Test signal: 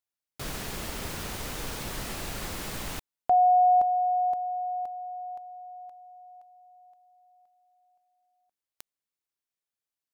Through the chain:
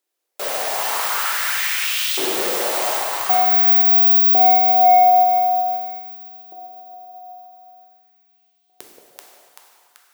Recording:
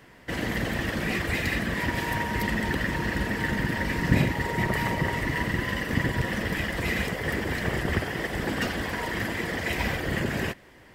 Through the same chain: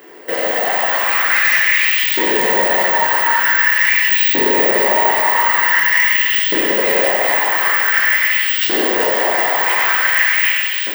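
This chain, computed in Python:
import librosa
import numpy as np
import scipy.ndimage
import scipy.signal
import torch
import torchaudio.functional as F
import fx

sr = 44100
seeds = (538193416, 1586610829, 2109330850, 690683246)

p1 = (np.kron(x[::2], np.eye(2)[0]) * 2)[:len(x)]
p2 = p1 + fx.echo_split(p1, sr, split_hz=640.0, low_ms=177, high_ms=385, feedback_pct=52, wet_db=-4.0, dry=0)
p3 = fx.filter_lfo_highpass(p2, sr, shape='saw_up', hz=0.46, low_hz=340.0, high_hz=3600.0, q=3.4)
p4 = fx.fold_sine(p3, sr, drive_db=9, ceiling_db=-7.0)
p5 = p3 + (p4 * 10.0 ** (-11.0 / 20.0))
p6 = scipy.signal.sosfilt(scipy.signal.butter(2, 89.0, 'highpass', fs=sr, output='sos'), p5)
p7 = fx.hum_notches(p6, sr, base_hz=50, count=7)
y = fx.rev_plate(p7, sr, seeds[0], rt60_s=2.3, hf_ratio=0.8, predelay_ms=0, drr_db=-0.5)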